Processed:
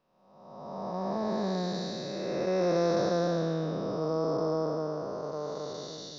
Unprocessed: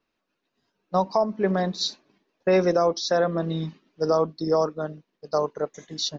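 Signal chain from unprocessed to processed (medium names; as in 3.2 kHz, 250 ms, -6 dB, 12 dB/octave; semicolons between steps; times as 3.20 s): spectral blur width 722 ms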